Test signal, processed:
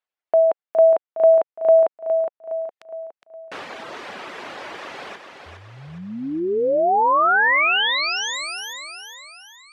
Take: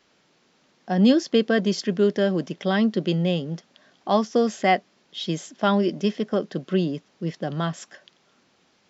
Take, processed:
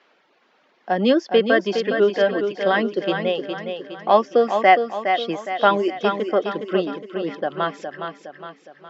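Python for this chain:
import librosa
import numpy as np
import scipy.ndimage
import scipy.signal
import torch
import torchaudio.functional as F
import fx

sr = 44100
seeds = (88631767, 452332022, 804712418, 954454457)

y = fx.dereverb_blind(x, sr, rt60_s=1.2)
y = fx.bandpass_edges(y, sr, low_hz=430.0, high_hz=2600.0)
y = fx.echo_feedback(y, sr, ms=413, feedback_pct=47, wet_db=-7)
y = y * librosa.db_to_amplitude(7.5)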